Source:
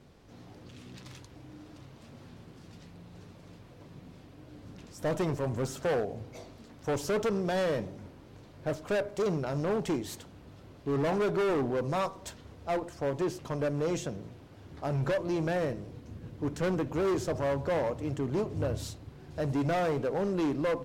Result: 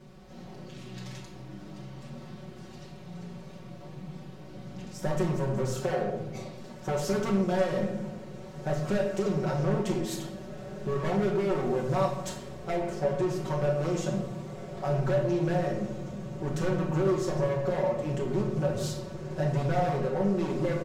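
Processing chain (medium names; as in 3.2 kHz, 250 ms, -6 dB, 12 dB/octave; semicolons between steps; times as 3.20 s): comb 5.4 ms, depth 88%; compression, threshold -29 dBFS, peak gain reduction 7.5 dB; echo that smears into a reverb 1946 ms, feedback 58%, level -14 dB; simulated room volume 320 m³, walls mixed, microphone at 1.1 m; loudspeaker Doppler distortion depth 0.15 ms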